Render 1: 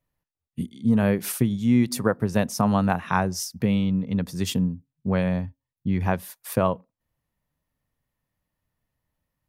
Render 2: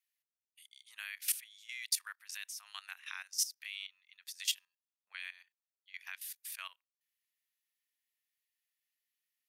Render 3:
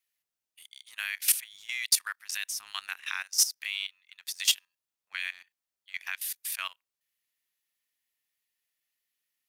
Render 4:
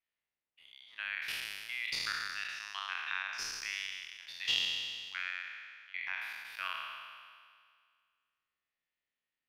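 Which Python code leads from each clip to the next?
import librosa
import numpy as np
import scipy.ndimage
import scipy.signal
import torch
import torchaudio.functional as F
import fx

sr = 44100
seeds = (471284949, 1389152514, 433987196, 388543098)

y1 = scipy.signal.sosfilt(scipy.signal.cheby2(4, 80, 350.0, 'highpass', fs=sr, output='sos'), x)
y1 = fx.level_steps(y1, sr, step_db=15)
y1 = F.gain(torch.from_numpy(y1), 1.0).numpy()
y2 = fx.leveller(y1, sr, passes=1)
y2 = F.gain(torch.from_numpy(y2), 6.5).numpy()
y3 = fx.spec_trails(y2, sr, decay_s=2.0)
y3 = fx.air_absorb(y3, sr, metres=320.0)
y3 = F.gain(torch.from_numpy(y3), -3.0).numpy()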